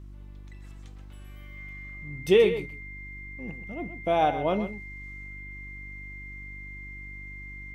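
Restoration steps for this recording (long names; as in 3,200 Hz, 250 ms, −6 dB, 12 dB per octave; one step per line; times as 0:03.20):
hum removal 49.2 Hz, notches 7
notch filter 2,100 Hz, Q 30
echo removal 128 ms −11.5 dB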